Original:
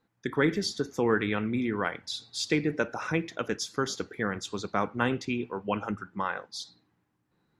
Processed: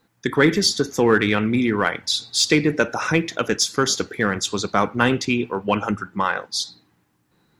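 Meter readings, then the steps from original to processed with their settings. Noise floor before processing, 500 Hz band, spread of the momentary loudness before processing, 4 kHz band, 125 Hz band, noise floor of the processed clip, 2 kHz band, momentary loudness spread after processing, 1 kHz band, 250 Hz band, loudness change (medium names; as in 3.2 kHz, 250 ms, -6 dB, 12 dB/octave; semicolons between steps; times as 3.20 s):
-76 dBFS, +9.0 dB, 8 LU, +13.5 dB, +9.0 dB, -66 dBFS, +10.0 dB, 7 LU, +9.5 dB, +9.0 dB, +10.0 dB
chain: treble shelf 3.3 kHz +7 dB; in parallel at -8.5 dB: overload inside the chain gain 22.5 dB; on the sum: trim +6.5 dB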